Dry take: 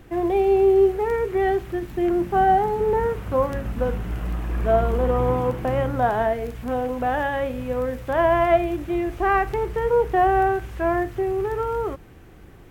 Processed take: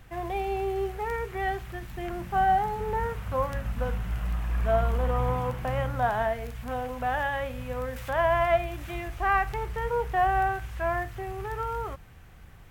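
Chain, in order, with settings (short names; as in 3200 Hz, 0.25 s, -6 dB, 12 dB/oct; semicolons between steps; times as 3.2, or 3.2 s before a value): bell 340 Hz -14.5 dB 1.2 oct; 7.96–9.08 mismatched tape noise reduction encoder only; gain -1.5 dB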